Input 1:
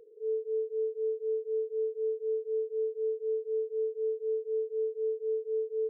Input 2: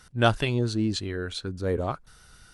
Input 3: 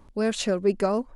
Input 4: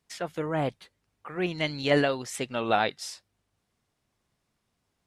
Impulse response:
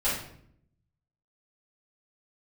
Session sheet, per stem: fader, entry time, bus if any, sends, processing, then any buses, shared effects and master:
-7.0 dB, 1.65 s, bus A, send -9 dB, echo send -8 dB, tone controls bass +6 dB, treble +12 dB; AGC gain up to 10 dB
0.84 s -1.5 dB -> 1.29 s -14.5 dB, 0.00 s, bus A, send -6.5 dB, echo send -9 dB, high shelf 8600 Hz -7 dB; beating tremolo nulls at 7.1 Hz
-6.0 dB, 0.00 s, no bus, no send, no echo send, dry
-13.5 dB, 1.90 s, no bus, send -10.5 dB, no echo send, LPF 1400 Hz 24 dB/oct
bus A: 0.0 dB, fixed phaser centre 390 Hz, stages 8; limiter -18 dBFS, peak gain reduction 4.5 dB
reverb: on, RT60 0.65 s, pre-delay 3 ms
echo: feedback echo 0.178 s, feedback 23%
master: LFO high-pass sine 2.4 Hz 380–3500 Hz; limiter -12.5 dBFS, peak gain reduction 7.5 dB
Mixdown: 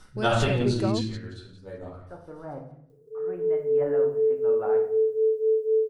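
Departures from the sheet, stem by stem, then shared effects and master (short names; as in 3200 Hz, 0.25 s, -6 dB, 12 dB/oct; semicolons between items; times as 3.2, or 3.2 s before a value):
stem 1: entry 1.65 s -> 2.90 s; master: missing LFO high-pass sine 2.4 Hz 380–3500 Hz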